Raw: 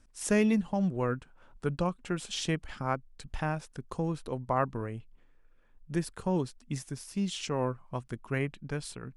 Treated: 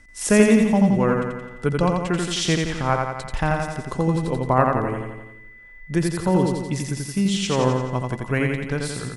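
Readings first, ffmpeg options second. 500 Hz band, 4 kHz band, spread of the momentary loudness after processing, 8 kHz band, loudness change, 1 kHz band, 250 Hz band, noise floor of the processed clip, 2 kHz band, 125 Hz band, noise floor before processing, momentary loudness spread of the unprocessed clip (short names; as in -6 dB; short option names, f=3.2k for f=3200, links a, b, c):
+11.5 dB, +11.0 dB, 10 LU, +11.5 dB, +11.0 dB, +11.5 dB, +11.5 dB, -44 dBFS, +11.5 dB, +11.5 dB, -61 dBFS, 11 LU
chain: -af "aeval=exprs='val(0)+0.000891*sin(2*PI*2000*n/s)':c=same,aecho=1:1:86|172|258|344|430|516|602|688:0.668|0.388|0.225|0.13|0.0756|0.0439|0.0254|0.0148,volume=9dB"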